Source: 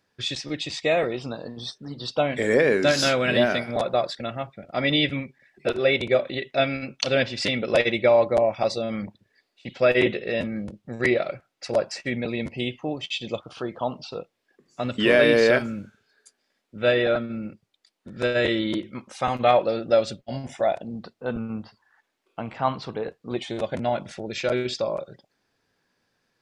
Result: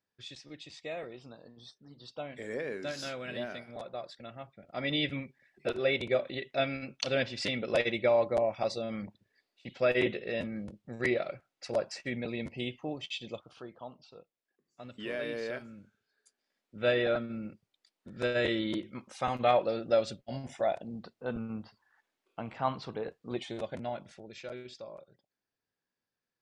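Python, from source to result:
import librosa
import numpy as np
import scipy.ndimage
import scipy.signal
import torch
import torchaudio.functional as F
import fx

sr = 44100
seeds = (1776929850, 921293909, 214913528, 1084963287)

y = fx.gain(x, sr, db=fx.line((3.97, -17.5), (5.13, -8.0), (13.08, -8.0), (13.97, -19.0), (15.6, -19.0), (16.82, -7.0), (23.38, -7.0), (24.61, -19.0)))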